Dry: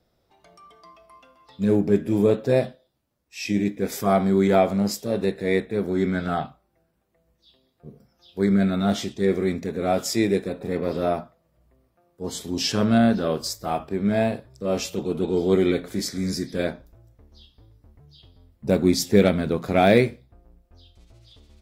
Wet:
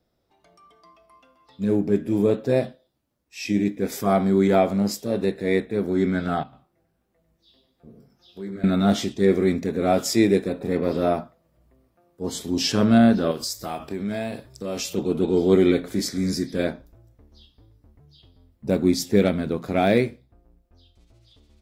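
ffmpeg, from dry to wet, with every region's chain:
-filter_complex "[0:a]asettb=1/sr,asplit=3[a][b][c];[a]atrim=end=6.434[d];[b]atrim=start=6.43:end=8.64,asetpts=PTS-STARTPTS,afade=t=in:d=0.004:c=qsin,afade=t=out:st=2.206:d=0.004:c=qsin,flanger=delay=15.5:depth=5.4:speed=1.5,acompressor=threshold=-45dB:ratio=2:attack=3.2:release=140:knee=1:detection=peak,aecho=1:1:98:0.422,atrim=end_sample=97461[e];[c]atrim=start=8.636[f];[d][e]acrossfade=d=0.004:c1=hsin:c2=qsin[g];[g][f]acrossfade=d=0.004:c1=qsin:c2=hsin,asettb=1/sr,asplit=3[h][i][j];[h]atrim=end=13.314[k];[i]atrim=start=13.31:end=14.93,asetpts=PTS-STARTPTS,afade=t=in:d=0.004:c=qsin,afade=t=out:st=1.616:d=0.004:c=qsin,highshelf=f=2.1k:g=9,acompressor=threshold=-30dB:ratio=2.5:attack=3.2:release=140:knee=1:detection=peak[l];[j]atrim=start=14.926[m];[k][l]acrossfade=d=0.004:c1=hsin:c2=qsin[n];[n][m]acrossfade=d=0.004:c1=qsin:c2=hsin,equalizer=f=280:t=o:w=0.73:g=3.5,dynaudnorm=f=260:g=17:m=11.5dB,volume=-4.5dB"

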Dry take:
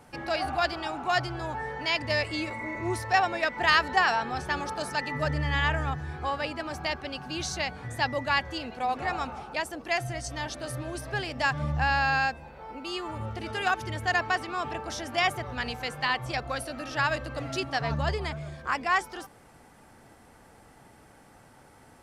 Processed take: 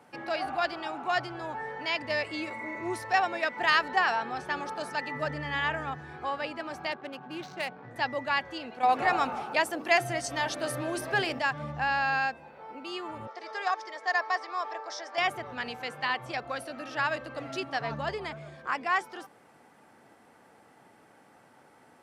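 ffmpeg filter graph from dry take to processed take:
-filter_complex "[0:a]asettb=1/sr,asplit=3[a][b][c];[a]atrim=end=2.434[d];[b]atrim=start=2.43:end=3.82,asetpts=PTS-STARTPTS,afade=t=in:d=0.004:c=qsin,afade=t=out:st=1.386:d=0.004:c=qsin,highpass=41,highshelf=f=5.4k:g=4.5[e];[c]atrim=start=3.816[f];[d][e]acrossfade=d=0.004:c1=hsin:c2=qsin[g];[g][f]acrossfade=d=0.004:c1=qsin:c2=hsin,asettb=1/sr,asplit=3[h][i][j];[h]atrim=end=6.924[k];[i]atrim=start=6.92:end=7.96,asetpts=PTS-STARTPTS,afade=t=in:d=0.004:c=qsin,afade=t=out:st=1.036:d=0.004:c=qsin,highpass=f=110:w=0.5412,highpass=f=110:w=1.3066,adynamicsmooth=sensitivity=4.5:basefreq=1.1k[l];[j]atrim=start=7.956[m];[k][l]acrossfade=d=0.004:c1=hsin:c2=qsin[n];[n][m]acrossfade=d=0.004:c1=qsin:c2=hsin,asettb=1/sr,asplit=3[o][p][q];[o]atrim=end=8.834[r];[p]atrim=start=8.83:end=11.39,asetpts=PTS-STARTPTS,afade=t=in:d=0.004:c=qsin,afade=t=out:st=2.556:d=0.004:c=qsin,highshelf=f=12k:g=10.5,bandreject=f=60:t=h:w=6,bandreject=f=120:t=h:w=6,bandreject=f=180:t=h:w=6,bandreject=f=240:t=h:w=6,bandreject=f=300:t=h:w=6,bandreject=f=360:t=h:w=6,bandreject=f=420:t=h:w=6,bandreject=f=480:t=h:w=6,bandreject=f=540:t=h:w=6,acontrast=86[s];[q]atrim=start=11.386[t];[r][s]acrossfade=d=0.004:c1=hsin:c2=qsin[u];[u][t]acrossfade=d=0.004:c1=qsin:c2=hsin,asettb=1/sr,asplit=3[v][w][x];[v]atrim=end=13.274[y];[w]atrim=start=13.27:end=15.18,asetpts=PTS-STARTPTS,afade=t=in:d=0.004:c=qsin,afade=t=out:st=1.906:d=0.004:c=qsin,highpass=f=440:w=0.5412,highpass=f=440:w=1.3066,equalizer=f=1.1k:t=q:w=4:g=3,equalizer=f=1.6k:t=q:w=4:g=5,equalizer=f=2.8k:t=q:w=4:g=-10,equalizer=f=5.2k:t=q:w=4:g=8,lowpass=f=7.3k:w=0.5412,lowpass=f=7.3k:w=1.3066,bandreject=f=1.5k:w=5[z];[x]atrim=start=15.176[aa];[y][z]acrossfade=d=0.004:c1=hsin:c2=qsin[ab];[ab][aa]acrossfade=d=0.004:c1=qsin:c2=hsin,highpass=170,bass=f=250:g=-2,treble=f=4k:g=-6,volume=-2dB"

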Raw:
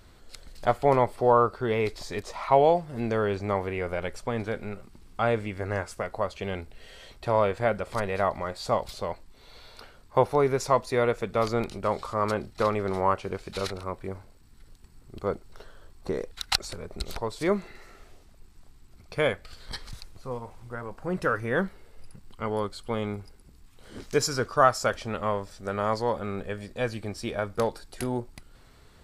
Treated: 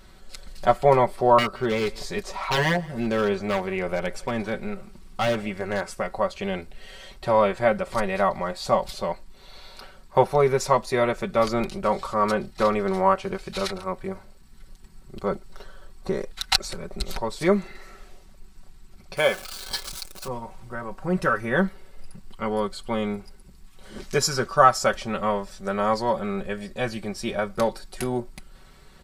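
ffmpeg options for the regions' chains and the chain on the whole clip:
-filter_complex "[0:a]asettb=1/sr,asplit=3[a][b][c];[a]atrim=end=1.384[d];[b]atrim=start=1.38:end=5.9,asetpts=PTS-STARTPTS,afade=t=in:d=0.004:c=qsin,afade=t=out:st=4.516:d=0.004:c=qsin,aeval=exprs='0.1*(abs(mod(val(0)/0.1+3,4)-2)-1)':c=same,aecho=1:1:170:0.075,atrim=end_sample=199332[e];[c]atrim=start=5.896[f];[d][e]acrossfade=d=0.004:c1=hsin:c2=qsin[g];[g][f]acrossfade=d=0.004:c1=qsin:c2=hsin,asettb=1/sr,asplit=3[h][i][j];[h]atrim=end=19.174[k];[i]atrim=start=19.17:end=20.28,asetpts=PTS-STARTPTS,afade=t=in:d=0.004:c=qsin,afade=t=out:st=1.106:d=0.004:c=qsin,aeval=exprs='val(0)+0.5*0.015*sgn(val(0))':c=same,bass=f=250:g=-11,treble=f=4k:g=5,bandreject=f=1.9k:w=7.2[l];[j]atrim=start=20.276[m];[k][l]acrossfade=d=0.004:c1=hsin:c2=qsin[n];[n][m]acrossfade=d=0.004:c1=qsin:c2=hsin,equalizer=f=370:t=o:w=0.77:g=-2,aecho=1:1:5.3:0.72,volume=2.5dB"

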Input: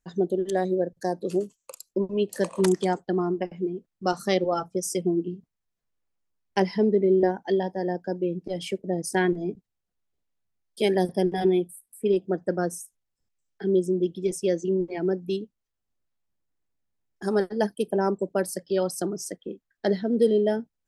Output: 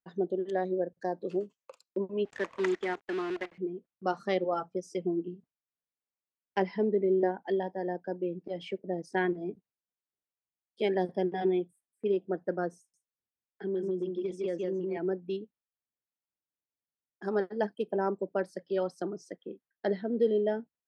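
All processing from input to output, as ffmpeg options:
-filter_complex "[0:a]asettb=1/sr,asplit=3[a][b][c];[a]atrim=end=2.254[d];[b]atrim=start=2.25:end=3.58,asetpts=PTS-STARTPTS,afade=t=in:d=0.004:c=qsin,afade=t=out:st=1.326:d=0.004:c=qsin,highpass=f=240:w=0.5412,highpass=f=240:w=1.3066,equalizer=f=540:t=q:w=4:g=-6,equalizer=f=790:t=q:w=4:g=-8,equalizer=f=1.4k:t=q:w=4:g=3,equalizer=f=2k:t=q:w=4:g=10,equalizer=f=4.3k:t=q:w=4:g=-8,equalizer=f=6.9k:t=q:w=4:g=8,lowpass=f=8.4k:w=0.5412,lowpass=f=8.4k:w=1.3066,acrusher=bits=6:dc=4:mix=0:aa=0.000001[e];[c]atrim=start=3.576[f];[d][e]acrossfade=d=0.004:c1=hsin:c2=qsin[g];[g][f]acrossfade=d=0.004:c1=qsin:c2=hsin,asettb=1/sr,asplit=3[h][i][j];[h]atrim=end=12.784[k];[i]atrim=start=12.78:end=14.97,asetpts=PTS-STARTPTS,afade=t=in:d=0.004:c=qsin,afade=t=out:st=2.186:d=0.004:c=qsin,aecho=1:1:156:0.631,atrim=end_sample=96579,acompressor=threshold=-22dB:ratio=4:attack=3.2:release=140:knee=1:detection=peak[l];[j]atrim=start=14.966[m];[k][l]acrossfade=d=0.004:c1=hsin:c2=qsin[n];[n][m]acrossfade=d=0.004:c1=qsin:c2=hsin,lowpass=2.7k,agate=range=-7dB:threshold=-54dB:ratio=16:detection=peak,highpass=f=270:p=1,volume=-4dB"

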